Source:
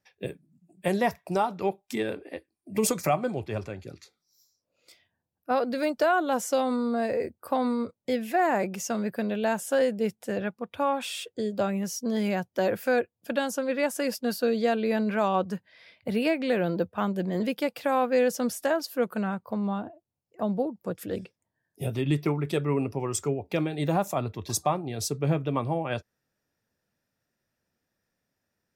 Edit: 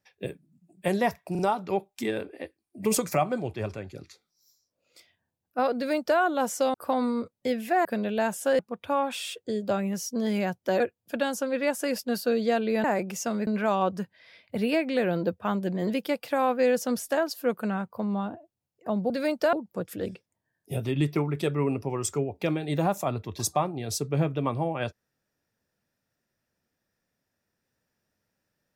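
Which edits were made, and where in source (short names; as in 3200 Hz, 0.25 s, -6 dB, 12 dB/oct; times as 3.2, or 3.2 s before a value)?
1.31 stutter 0.04 s, 3 plays
5.68–6.11 copy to 20.63
6.66–7.37 cut
8.48–9.11 move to 15
9.85–10.49 cut
12.7–12.96 cut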